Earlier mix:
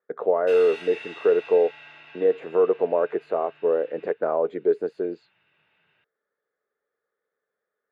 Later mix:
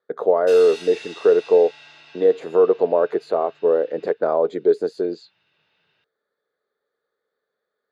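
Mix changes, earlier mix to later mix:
speech +4.5 dB; master: add resonant high shelf 3.4 kHz +11.5 dB, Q 1.5

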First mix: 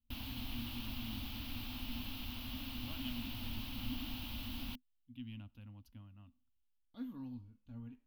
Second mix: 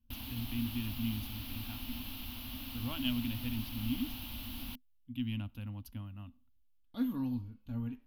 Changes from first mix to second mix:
speech +11.0 dB; master: add peaking EQ 12 kHz +9.5 dB 0.56 oct

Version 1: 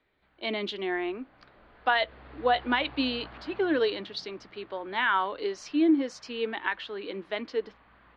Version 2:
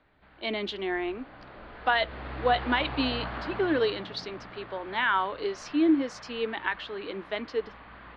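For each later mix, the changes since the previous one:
background +11.0 dB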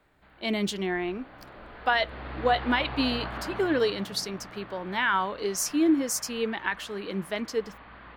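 speech: remove Chebyshev band-pass 270–3900 Hz, order 3

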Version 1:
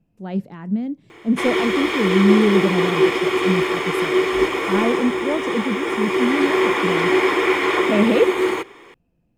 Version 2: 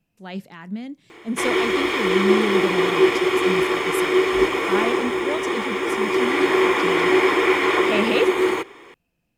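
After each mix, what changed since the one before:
speech: add tilt shelf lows -9 dB, about 1.1 kHz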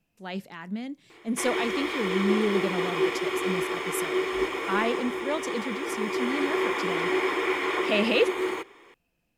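background -8.0 dB; master: add peaking EQ 130 Hz -4.5 dB 2 oct

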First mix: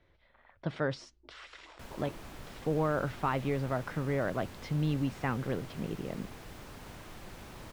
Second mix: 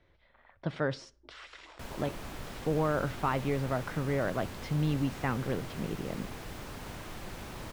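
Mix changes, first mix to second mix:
speech: send on; background +5.0 dB

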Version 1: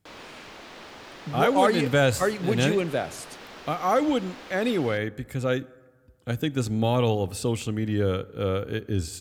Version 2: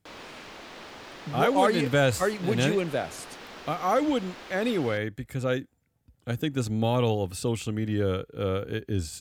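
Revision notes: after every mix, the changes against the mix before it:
reverb: off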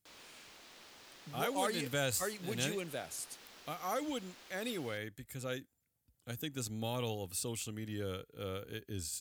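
background -3.5 dB; master: add pre-emphasis filter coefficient 0.8

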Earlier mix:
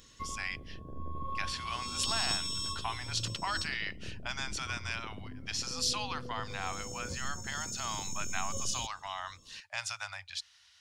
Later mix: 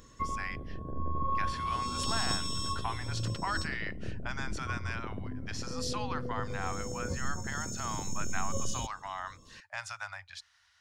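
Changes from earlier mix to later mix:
background +6.0 dB; master: add resonant high shelf 2.2 kHz -6.5 dB, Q 1.5

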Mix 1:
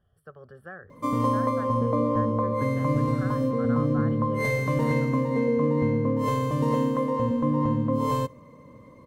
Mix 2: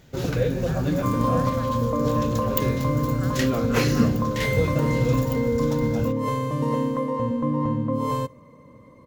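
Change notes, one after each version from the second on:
first sound: unmuted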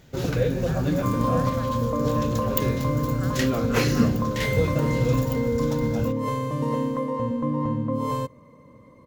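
second sound: send -9.0 dB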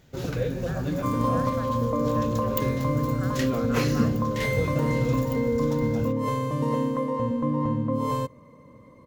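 first sound -4.5 dB

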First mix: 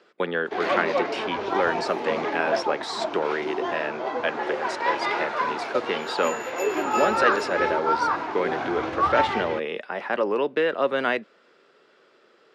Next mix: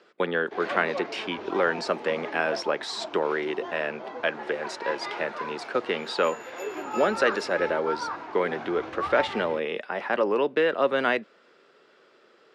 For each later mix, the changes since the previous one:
first sound -9.0 dB; second sound -10.0 dB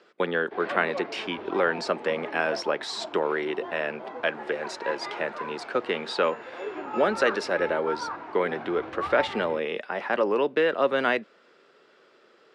first sound: add distance through air 230 m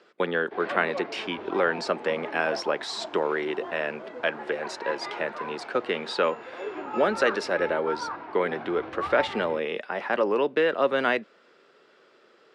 second sound: entry -1.60 s

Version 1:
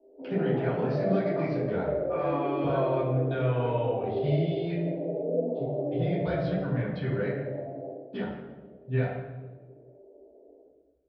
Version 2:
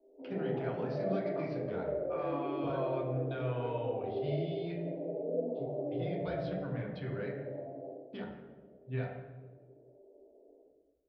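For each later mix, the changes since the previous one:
speech: send -9.5 dB; background -6.0 dB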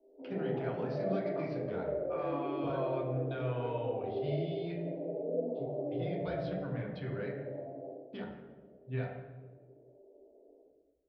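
no change

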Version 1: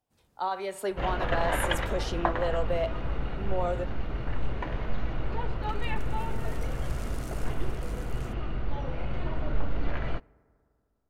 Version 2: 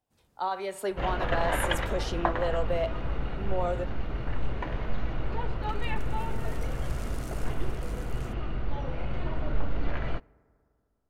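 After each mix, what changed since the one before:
no change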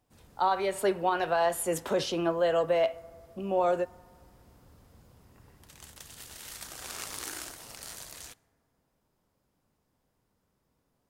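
speech +4.5 dB; first sound +11.5 dB; second sound: muted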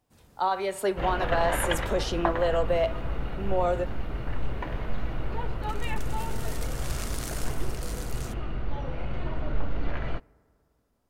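second sound: unmuted

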